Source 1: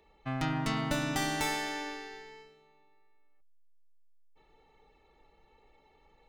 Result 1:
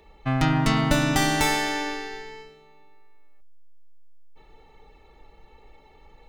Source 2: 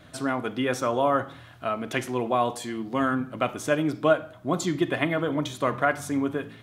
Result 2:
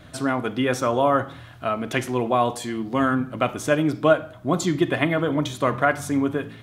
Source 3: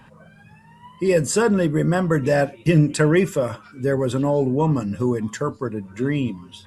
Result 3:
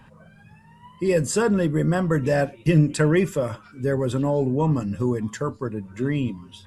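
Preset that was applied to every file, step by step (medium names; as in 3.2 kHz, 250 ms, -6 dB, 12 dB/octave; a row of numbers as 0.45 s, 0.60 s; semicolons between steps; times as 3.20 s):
bass shelf 98 Hz +7 dB; normalise loudness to -23 LUFS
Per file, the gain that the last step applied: +9.5 dB, +3.0 dB, -3.0 dB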